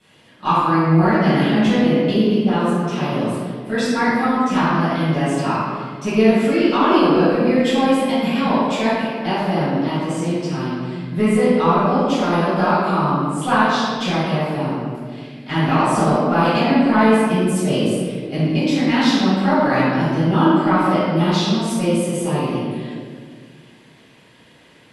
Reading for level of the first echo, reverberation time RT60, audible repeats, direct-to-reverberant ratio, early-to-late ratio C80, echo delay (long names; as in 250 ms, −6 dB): no echo audible, 1.9 s, no echo audible, −15.5 dB, −1.0 dB, no echo audible